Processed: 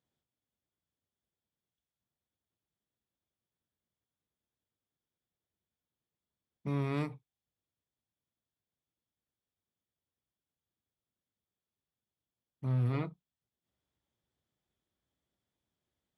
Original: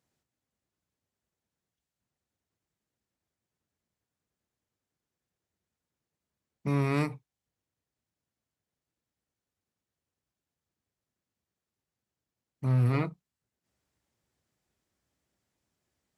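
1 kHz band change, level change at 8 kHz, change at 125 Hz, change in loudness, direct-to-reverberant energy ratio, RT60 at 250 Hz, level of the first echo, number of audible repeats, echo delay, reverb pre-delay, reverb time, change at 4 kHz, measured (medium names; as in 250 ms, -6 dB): -7.0 dB, no reading, -5.5 dB, -5.5 dB, no reverb, no reverb, no echo, no echo, no echo, no reverb, no reverb, -5.5 dB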